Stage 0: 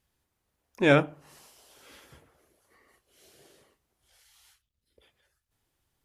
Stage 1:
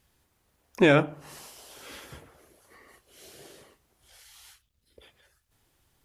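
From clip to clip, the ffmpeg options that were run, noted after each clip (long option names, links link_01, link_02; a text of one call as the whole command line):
ffmpeg -i in.wav -af "alimiter=limit=-18dB:level=0:latency=1:release=287,volume=8.5dB" out.wav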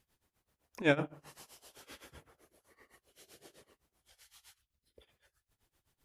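ffmpeg -i in.wav -af "tremolo=f=7.8:d=0.91,volume=-5dB" out.wav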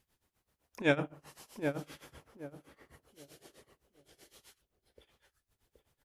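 ffmpeg -i in.wav -filter_complex "[0:a]asplit=2[link_01][link_02];[link_02]adelay=774,lowpass=frequency=1000:poles=1,volume=-4.5dB,asplit=2[link_03][link_04];[link_04]adelay=774,lowpass=frequency=1000:poles=1,volume=0.27,asplit=2[link_05][link_06];[link_06]adelay=774,lowpass=frequency=1000:poles=1,volume=0.27,asplit=2[link_07][link_08];[link_08]adelay=774,lowpass=frequency=1000:poles=1,volume=0.27[link_09];[link_01][link_03][link_05][link_07][link_09]amix=inputs=5:normalize=0" out.wav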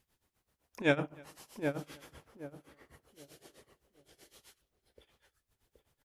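ffmpeg -i in.wav -filter_complex "[0:a]asplit=2[link_01][link_02];[link_02]adelay=303.2,volume=-27dB,highshelf=frequency=4000:gain=-6.82[link_03];[link_01][link_03]amix=inputs=2:normalize=0" out.wav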